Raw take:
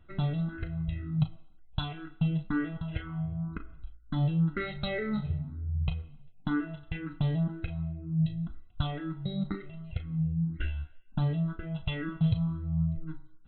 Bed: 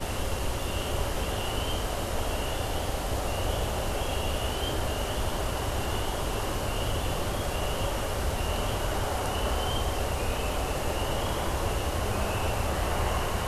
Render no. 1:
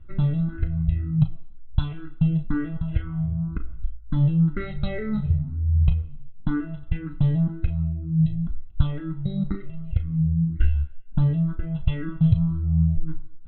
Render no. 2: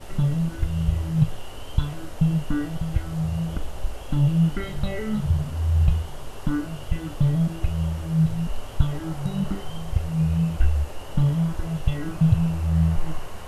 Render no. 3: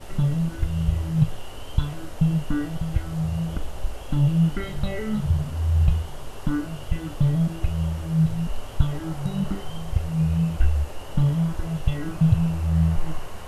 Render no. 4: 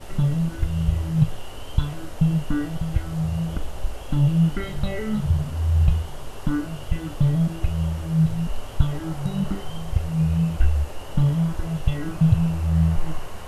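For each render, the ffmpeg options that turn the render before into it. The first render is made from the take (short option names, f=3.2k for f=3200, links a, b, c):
-af "aemphasis=mode=reproduction:type=bsi,bandreject=f=720:w=13"
-filter_complex "[1:a]volume=-10dB[a];[0:a][a]amix=inputs=2:normalize=0"
-af anull
-af "volume=1dB"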